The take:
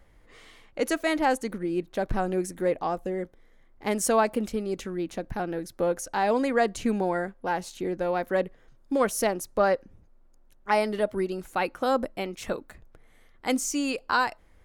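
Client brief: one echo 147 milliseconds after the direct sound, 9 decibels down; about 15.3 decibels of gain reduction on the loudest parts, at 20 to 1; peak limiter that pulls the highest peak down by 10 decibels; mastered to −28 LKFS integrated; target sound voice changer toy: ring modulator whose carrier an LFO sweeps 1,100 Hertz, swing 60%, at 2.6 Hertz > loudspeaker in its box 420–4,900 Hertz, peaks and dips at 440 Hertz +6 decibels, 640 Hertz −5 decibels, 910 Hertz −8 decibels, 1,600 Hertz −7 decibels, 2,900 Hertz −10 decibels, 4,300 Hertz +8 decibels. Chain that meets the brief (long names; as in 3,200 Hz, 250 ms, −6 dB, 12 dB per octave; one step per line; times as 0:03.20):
downward compressor 20 to 1, threshold −33 dBFS
brickwall limiter −30 dBFS
single-tap delay 147 ms −9 dB
ring modulator whose carrier an LFO sweeps 1,100 Hz, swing 60%, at 2.6 Hz
loudspeaker in its box 420–4,900 Hz, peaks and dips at 440 Hz +6 dB, 640 Hz −5 dB, 910 Hz −8 dB, 1,600 Hz −7 dB, 2,900 Hz −10 dB, 4,300 Hz +8 dB
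level +18.5 dB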